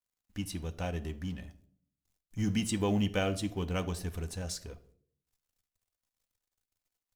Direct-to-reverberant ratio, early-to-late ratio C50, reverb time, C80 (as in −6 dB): 8.0 dB, 17.0 dB, 0.60 s, 21.0 dB